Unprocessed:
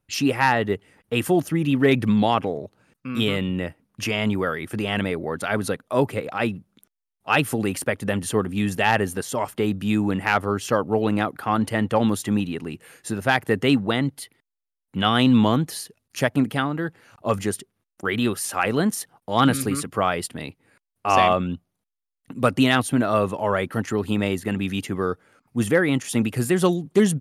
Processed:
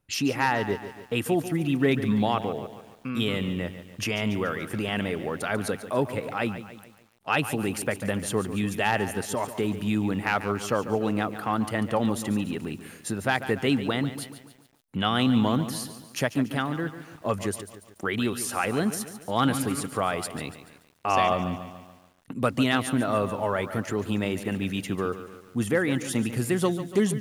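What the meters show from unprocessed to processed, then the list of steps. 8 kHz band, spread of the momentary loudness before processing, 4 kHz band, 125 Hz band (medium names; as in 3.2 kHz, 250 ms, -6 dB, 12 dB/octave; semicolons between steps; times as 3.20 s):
-3.0 dB, 12 LU, -4.0 dB, -4.0 dB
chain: in parallel at +3 dB: compression 8:1, threshold -31 dBFS, peak gain reduction 18 dB; on the sum: bit-crushed delay 143 ms, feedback 55%, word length 7-bit, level -12 dB; trim -7 dB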